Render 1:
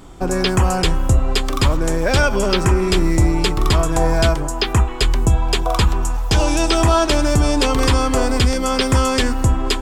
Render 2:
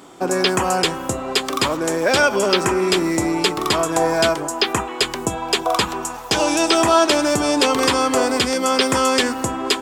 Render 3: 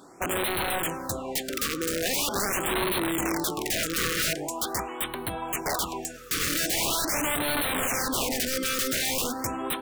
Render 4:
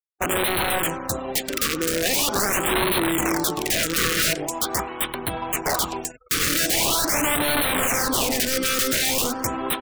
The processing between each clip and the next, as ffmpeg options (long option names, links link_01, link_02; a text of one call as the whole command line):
ffmpeg -i in.wav -af "highpass=270,volume=2dB" out.wav
ffmpeg -i in.wav -af "aeval=exprs='(mod(5.01*val(0)+1,2)-1)/5.01':channel_layout=same,afftfilt=real='re*(1-between(b*sr/1024,770*pow(6300/770,0.5+0.5*sin(2*PI*0.43*pts/sr))/1.41,770*pow(6300/770,0.5+0.5*sin(2*PI*0.43*pts/sr))*1.41))':imag='im*(1-between(b*sr/1024,770*pow(6300/770,0.5+0.5*sin(2*PI*0.43*pts/sr))/1.41,770*pow(6300/770,0.5+0.5*sin(2*PI*0.43*pts/sr))*1.41))':win_size=1024:overlap=0.75,volume=-7dB" out.wav
ffmpeg -i in.wav -filter_complex "[0:a]asplit=2[link_01][link_02];[link_02]adelay=90,lowpass=frequency=2200:poles=1,volume=-18dB,asplit=2[link_03][link_04];[link_04]adelay=90,lowpass=frequency=2200:poles=1,volume=0.51,asplit=2[link_05][link_06];[link_06]adelay=90,lowpass=frequency=2200:poles=1,volume=0.51,asplit=2[link_07][link_08];[link_08]adelay=90,lowpass=frequency=2200:poles=1,volume=0.51[link_09];[link_01][link_03][link_05][link_07][link_09]amix=inputs=5:normalize=0,aeval=exprs='sgn(val(0))*max(abs(val(0))-0.00668,0)':channel_layout=same,afftfilt=real='re*gte(hypot(re,im),0.00398)':imag='im*gte(hypot(re,im),0.00398)':win_size=1024:overlap=0.75,volume=6.5dB" out.wav